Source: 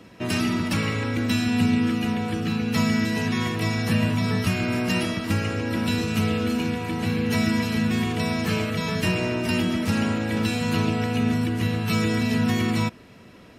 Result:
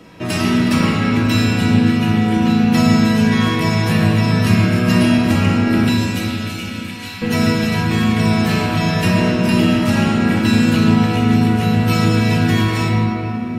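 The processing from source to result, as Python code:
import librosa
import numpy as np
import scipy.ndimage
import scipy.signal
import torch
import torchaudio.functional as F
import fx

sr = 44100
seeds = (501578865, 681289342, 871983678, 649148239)

y = fx.bessel_highpass(x, sr, hz=2400.0, order=2, at=(5.89, 7.22))
y = fx.room_shoebox(y, sr, seeds[0], volume_m3=190.0, walls='hard', distance_m=0.61)
y = F.gain(torch.from_numpy(y), 4.0).numpy()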